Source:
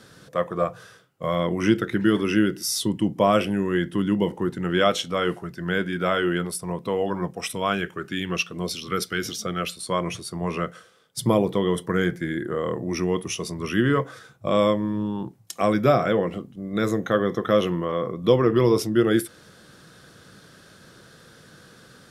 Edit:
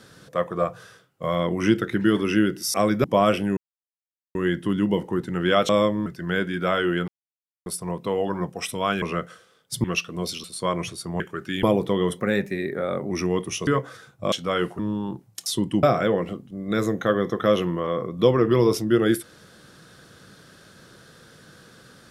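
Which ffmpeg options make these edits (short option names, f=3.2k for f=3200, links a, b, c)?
-filter_complex "[0:a]asplit=19[a][b][c][d][e][f][g][h][i][j][k][l][m][n][o][p][q][r][s];[a]atrim=end=2.742[t];[b]atrim=start=15.578:end=15.882[u];[c]atrim=start=3.108:end=3.64,asetpts=PTS-STARTPTS,afade=t=out:st=0.528:d=0.004:c=hsin,apad=pad_dur=0.78[v];[d]atrim=start=3.64:end=4.982,asetpts=PTS-STARTPTS,afade=t=in:d=0.004:c=hsin[w];[e]atrim=start=14.538:end=14.912[x];[f]atrim=start=5.448:end=6.47,asetpts=PTS-STARTPTS,afade=t=out:st=1.018:d=0.004:c=hsin,apad=pad_dur=0.58[y];[g]atrim=start=6.47:end=7.832,asetpts=PTS-STARTPTS,afade=t=in:d=0.004:c=hsin[z];[h]atrim=start=10.468:end=11.292[aa];[i]atrim=start=8.258:end=8.862[ab];[j]atrim=start=9.708:end=10.472[ac];[k]atrim=start=7.828:end=8.262[ad];[l]atrim=start=11.288:end=11.854[ae];[m]atrim=start=11.85:end=12.89,asetpts=PTS-STARTPTS,asetrate=49833,aresample=44100[af];[n]atrim=start=12.886:end=13.452[ag];[o]atrim=start=13.888:end=14.542[ah];[p]atrim=start=4.978:end=5.452[ai];[q]atrim=start=14.908:end=15.582[aj];[r]atrim=start=2.738:end=3.112[ak];[s]atrim=start=15.878[al];[t][u]acrossfade=d=0.004:c1=hsin:c2=hsin[am];[v][w]concat=n=2:v=0:a=1[an];[am][an]acrossfade=d=0.004:c1=hsin:c2=hsin[ao];[ao][x]acrossfade=d=0.004:c1=hsin:c2=hsin[ap];[y][z]concat=n=2:v=0:a=1[aq];[ap][aq]acrossfade=d=0.004:c1=hsin:c2=hsin[ar];[ar][aa]acrossfade=d=0.004:c1=hsin:c2=hsin[as];[as][ab]acrossfade=d=0.004:c1=hsin:c2=hsin[at];[at][ac]acrossfade=d=0.004:c1=hsin:c2=hsin[au];[au][ad]acrossfade=d=0.004:c1=hsin:c2=hsin[av];[av][ae]acrossfade=d=0.004:c1=hsin:c2=hsin[aw];[aw][af]acrossfade=d=0.004:c1=hsin:c2=hsin[ax];[ax][ag]acrossfade=d=0.004:c1=hsin:c2=hsin[ay];[ay][ah]acrossfade=d=0.004:c1=hsin:c2=hsin[az];[az][ai]acrossfade=d=0.004:c1=hsin:c2=hsin[ba];[ba][aj]acrossfade=d=0.004:c1=hsin:c2=hsin[bb];[bb][ak]acrossfade=d=0.004:c1=hsin:c2=hsin[bc];[bc][al]acrossfade=d=0.004:c1=hsin:c2=hsin"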